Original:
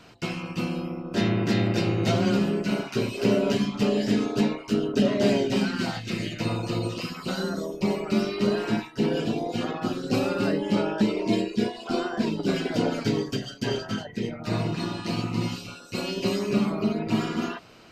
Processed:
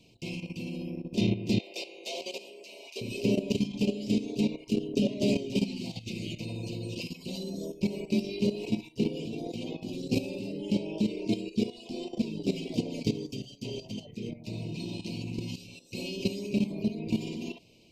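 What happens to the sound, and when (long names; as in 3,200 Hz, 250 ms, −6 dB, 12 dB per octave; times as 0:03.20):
0:01.59–0:03.01: high-pass filter 510 Hz 24 dB per octave
whole clip: elliptic band-stop filter 900–2,400 Hz, stop band 50 dB; parametric band 820 Hz −14.5 dB 0.61 octaves; output level in coarse steps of 12 dB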